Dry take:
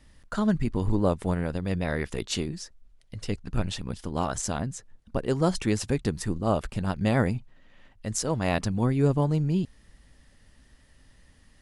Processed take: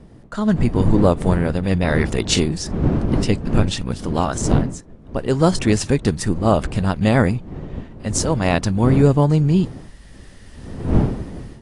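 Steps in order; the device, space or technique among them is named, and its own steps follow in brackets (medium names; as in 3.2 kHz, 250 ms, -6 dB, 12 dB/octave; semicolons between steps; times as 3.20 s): smartphone video outdoors (wind noise 230 Hz; level rider gain up to 15.5 dB; trim -1 dB; AAC 48 kbps 22.05 kHz)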